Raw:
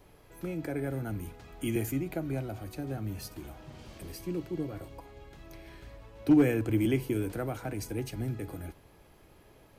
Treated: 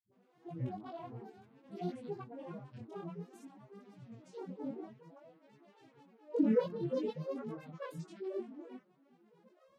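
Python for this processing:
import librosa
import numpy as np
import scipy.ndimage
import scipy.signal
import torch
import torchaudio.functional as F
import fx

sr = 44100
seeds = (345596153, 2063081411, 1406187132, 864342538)

y = fx.vocoder_glide(x, sr, note=54, semitones=10)
y = fx.granulator(y, sr, seeds[0], grain_ms=100.0, per_s=23.0, spray_ms=100.0, spread_st=12)
y = fx.chorus_voices(y, sr, voices=2, hz=0.54, base_ms=19, depth_ms=4.4, mix_pct=50)
y = fx.dispersion(y, sr, late='highs', ms=93.0, hz=350.0)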